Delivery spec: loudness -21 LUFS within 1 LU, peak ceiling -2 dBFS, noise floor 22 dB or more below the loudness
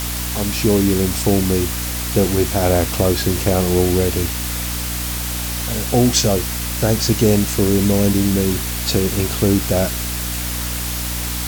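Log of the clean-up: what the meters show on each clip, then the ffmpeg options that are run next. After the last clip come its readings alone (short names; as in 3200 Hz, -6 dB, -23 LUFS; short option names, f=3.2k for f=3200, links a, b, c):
hum 60 Hz; harmonics up to 300 Hz; hum level -24 dBFS; noise floor -24 dBFS; noise floor target -40 dBFS; loudness -18.0 LUFS; peak -2.5 dBFS; loudness target -21.0 LUFS
-> -af "bandreject=f=60:t=h:w=6,bandreject=f=120:t=h:w=6,bandreject=f=180:t=h:w=6,bandreject=f=240:t=h:w=6,bandreject=f=300:t=h:w=6"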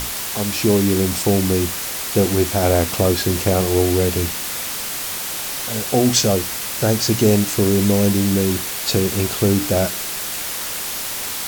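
hum none; noise floor -26 dBFS; noise floor target -41 dBFS
-> -af "afftdn=nr=15:nf=-26"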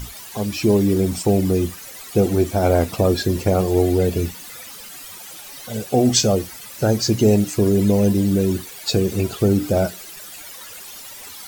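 noise floor -38 dBFS; noise floor target -41 dBFS
-> -af "afftdn=nr=6:nf=-38"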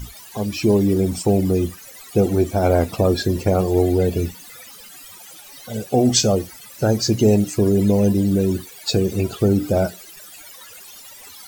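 noise floor -42 dBFS; loudness -19.0 LUFS; peak -3.5 dBFS; loudness target -21.0 LUFS
-> -af "volume=-2dB"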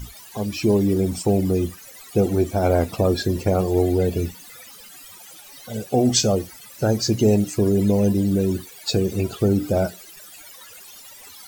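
loudness -21.0 LUFS; peak -5.5 dBFS; noise floor -44 dBFS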